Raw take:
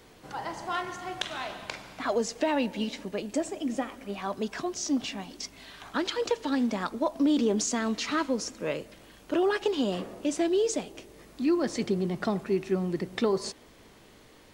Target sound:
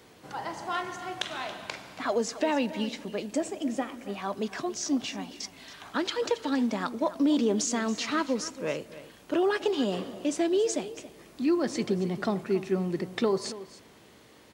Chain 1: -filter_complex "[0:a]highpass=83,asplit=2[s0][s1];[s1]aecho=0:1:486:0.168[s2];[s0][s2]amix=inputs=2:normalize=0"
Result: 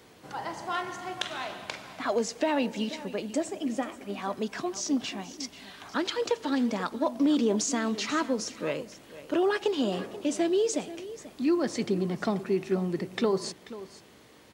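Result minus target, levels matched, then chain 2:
echo 209 ms late
-filter_complex "[0:a]highpass=83,asplit=2[s0][s1];[s1]aecho=0:1:277:0.168[s2];[s0][s2]amix=inputs=2:normalize=0"

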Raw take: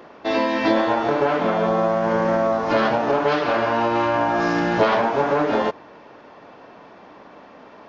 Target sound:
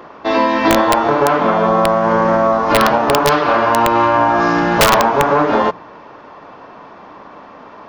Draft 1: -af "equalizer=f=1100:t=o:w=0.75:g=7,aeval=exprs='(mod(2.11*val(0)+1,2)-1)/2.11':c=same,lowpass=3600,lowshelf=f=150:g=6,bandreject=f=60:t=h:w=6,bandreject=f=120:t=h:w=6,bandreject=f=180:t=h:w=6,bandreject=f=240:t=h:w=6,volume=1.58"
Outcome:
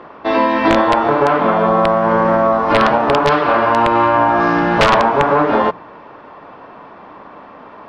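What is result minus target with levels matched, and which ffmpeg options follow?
4 kHz band -3.0 dB
-af "equalizer=f=1100:t=o:w=0.75:g=7,aeval=exprs='(mod(2.11*val(0)+1,2)-1)/2.11':c=same,lowshelf=f=150:g=6,bandreject=f=60:t=h:w=6,bandreject=f=120:t=h:w=6,bandreject=f=180:t=h:w=6,bandreject=f=240:t=h:w=6,volume=1.58"

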